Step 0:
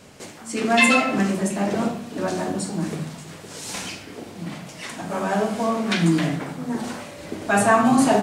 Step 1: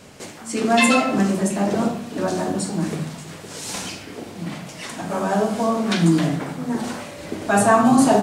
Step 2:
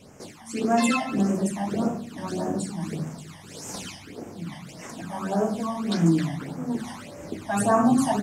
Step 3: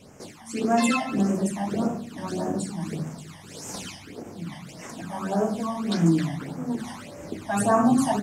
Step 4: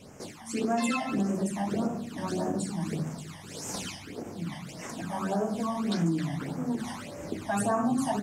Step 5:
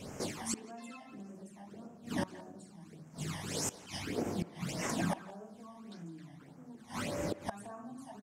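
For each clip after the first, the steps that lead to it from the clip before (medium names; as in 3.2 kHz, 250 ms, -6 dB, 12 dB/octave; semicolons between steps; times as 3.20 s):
dynamic bell 2.2 kHz, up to -6 dB, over -38 dBFS, Q 1.3; trim +2.5 dB
phase shifter stages 12, 1.7 Hz, lowest notch 420–4000 Hz; trim -4.5 dB
endings held to a fixed fall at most 280 dB/s
compression 2.5:1, threshold -27 dBFS, peak gain reduction 8.5 dB
inverted gate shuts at -26 dBFS, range -24 dB; speakerphone echo 170 ms, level -14 dB; trim +3.5 dB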